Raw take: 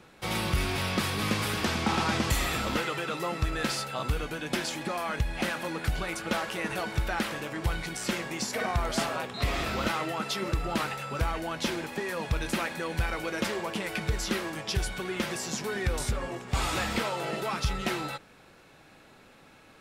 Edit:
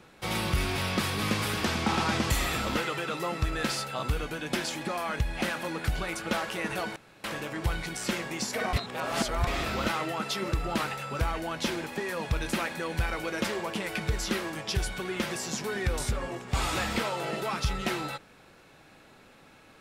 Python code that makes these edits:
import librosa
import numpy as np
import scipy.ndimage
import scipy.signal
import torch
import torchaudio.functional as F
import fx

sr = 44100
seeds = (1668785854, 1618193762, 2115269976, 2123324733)

y = fx.edit(x, sr, fx.room_tone_fill(start_s=6.96, length_s=0.28),
    fx.reverse_span(start_s=8.73, length_s=0.74), tone=tone)